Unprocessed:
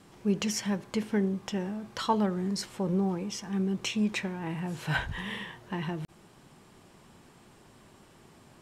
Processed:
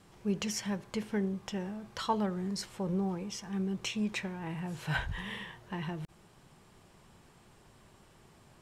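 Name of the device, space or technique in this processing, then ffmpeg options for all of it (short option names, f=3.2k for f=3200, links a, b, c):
low shelf boost with a cut just above: -af "lowshelf=f=73:g=7,equalizer=f=270:t=o:w=0.76:g=-4.5,volume=-3.5dB"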